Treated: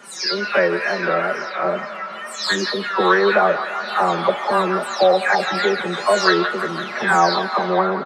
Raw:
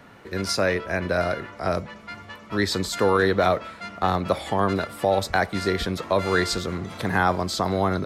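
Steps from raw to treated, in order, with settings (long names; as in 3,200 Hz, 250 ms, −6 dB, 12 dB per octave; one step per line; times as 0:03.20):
every frequency bin delayed by itself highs early, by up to 403 ms
band-pass filter 330–6,200 Hz
comb filter 5.1 ms, depth 96%
tape wow and flutter 96 cents
delay with a band-pass on its return 169 ms, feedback 74%, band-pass 1,500 Hz, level −9 dB
level +4.5 dB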